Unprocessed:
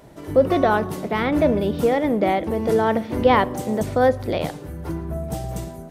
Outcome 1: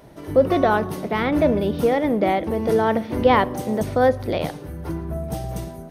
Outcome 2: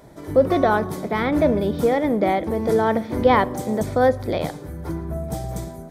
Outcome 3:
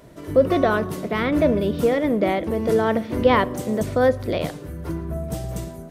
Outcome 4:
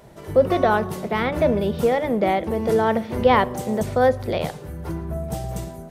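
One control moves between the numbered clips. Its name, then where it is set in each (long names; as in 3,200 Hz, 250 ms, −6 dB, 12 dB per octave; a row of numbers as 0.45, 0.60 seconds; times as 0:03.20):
notch filter, centre frequency: 7,400, 2,800, 820, 290 Hertz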